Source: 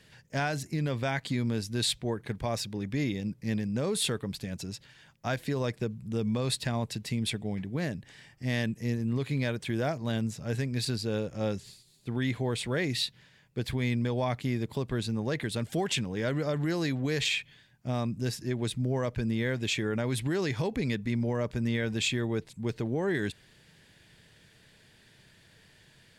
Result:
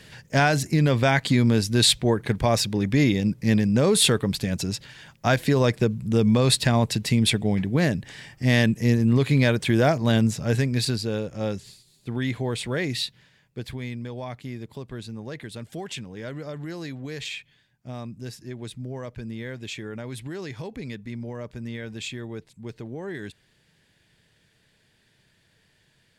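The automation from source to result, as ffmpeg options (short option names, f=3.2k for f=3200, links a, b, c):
-af "volume=10.5dB,afade=t=out:st=10.27:d=0.9:silence=0.421697,afade=t=out:st=12.88:d=1.05:silence=0.398107"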